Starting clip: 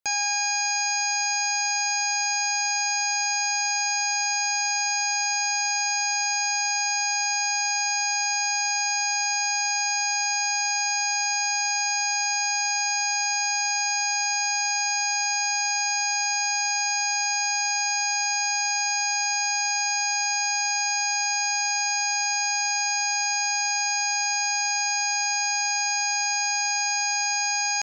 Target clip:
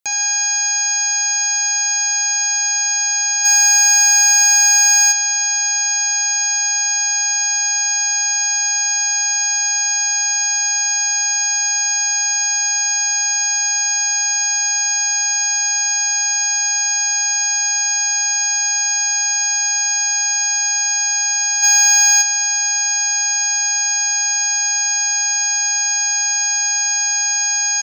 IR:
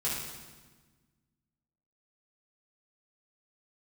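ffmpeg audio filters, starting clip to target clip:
-filter_complex "[0:a]highshelf=frequency=3000:gain=8,aecho=1:1:69|138|207|276|345:0.355|0.153|0.0656|0.0282|0.0121,asplit=3[link_01][link_02][link_03];[link_01]afade=type=out:start_time=3.44:duration=0.02[link_04];[link_02]acontrast=82,afade=type=in:start_time=3.44:duration=0.02,afade=type=out:start_time=5.11:duration=0.02[link_05];[link_03]afade=type=in:start_time=5.11:duration=0.02[link_06];[link_04][link_05][link_06]amix=inputs=3:normalize=0,bandreject=frequency=5000:width=17,asplit=3[link_07][link_08][link_09];[link_07]afade=type=out:start_time=21.62:duration=0.02[link_10];[link_08]acontrast=81,afade=type=in:start_time=21.62:duration=0.02,afade=type=out:start_time=22.21:duration=0.02[link_11];[link_09]afade=type=in:start_time=22.21:duration=0.02[link_12];[link_10][link_11][link_12]amix=inputs=3:normalize=0"

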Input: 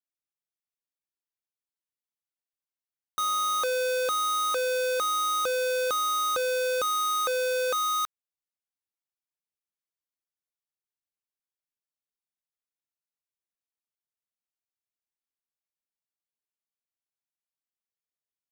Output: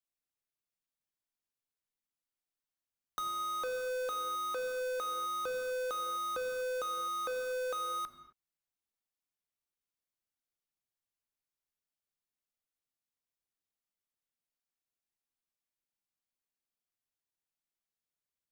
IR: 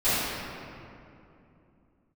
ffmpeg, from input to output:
-filter_complex "[0:a]acrossover=split=340|2200|5000[link_01][link_02][link_03][link_04];[link_01]acompressor=threshold=-53dB:ratio=4[link_05];[link_02]acompressor=threshold=-36dB:ratio=4[link_06];[link_03]acompressor=threshold=-53dB:ratio=4[link_07];[link_04]acompressor=threshold=-50dB:ratio=4[link_08];[link_05][link_06][link_07][link_08]amix=inputs=4:normalize=0,asplit=2[link_09][link_10];[1:a]atrim=start_sample=2205,afade=type=out:start_time=0.32:duration=0.01,atrim=end_sample=14553,lowshelf=frequency=420:gain=11[link_11];[link_10][link_11]afir=irnorm=-1:irlink=0,volume=-25dB[link_12];[link_09][link_12]amix=inputs=2:normalize=0,volume=-2dB"

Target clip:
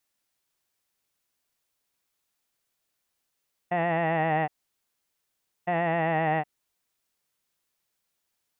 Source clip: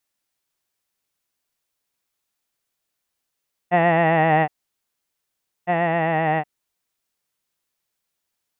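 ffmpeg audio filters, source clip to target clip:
ffmpeg -i in.wav -af "alimiter=limit=-16dB:level=0:latency=1:release=110" out.wav

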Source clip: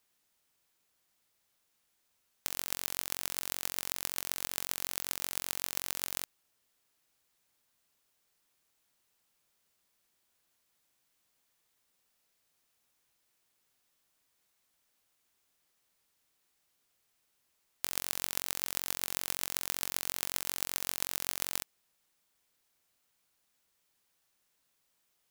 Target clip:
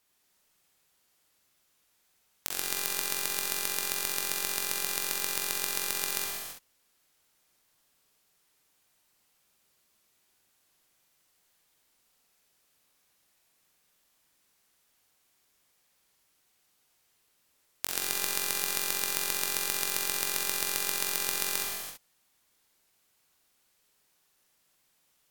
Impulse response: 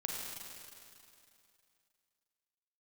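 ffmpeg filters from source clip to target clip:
-filter_complex "[1:a]atrim=start_sample=2205,afade=type=out:start_time=0.34:duration=0.01,atrim=end_sample=15435,asetrate=37044,aresample=44100[link_01];[0:a][link_01]afir=irnorm=-1:irlink=0,volume=3.5dB"

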